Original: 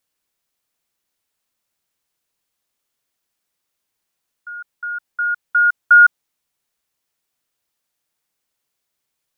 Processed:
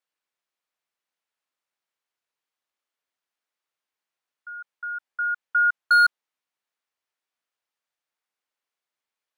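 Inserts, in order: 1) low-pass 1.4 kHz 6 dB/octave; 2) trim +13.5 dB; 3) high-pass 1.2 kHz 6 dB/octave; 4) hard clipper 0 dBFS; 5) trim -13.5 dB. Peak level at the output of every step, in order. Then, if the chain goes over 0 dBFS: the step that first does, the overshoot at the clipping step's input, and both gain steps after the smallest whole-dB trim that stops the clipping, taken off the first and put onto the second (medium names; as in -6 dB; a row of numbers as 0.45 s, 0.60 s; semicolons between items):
-7.0 dBFS, +6.5 dBFS, +4.0 dBFS, 0.0 dBFS, -13.5 dBFS; step 2, 4.0 dB; step 2 +9.5 dB, step 5 -9.5 dB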